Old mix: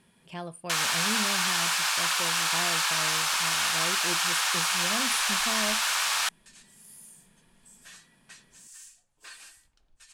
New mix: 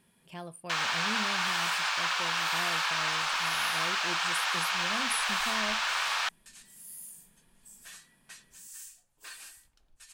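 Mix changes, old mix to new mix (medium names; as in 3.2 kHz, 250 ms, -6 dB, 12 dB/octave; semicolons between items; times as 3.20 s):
speech -4.5 dB; first sound: add distance through air 150 m; master: remove low-pass 9.3 kHz 12 dB/octave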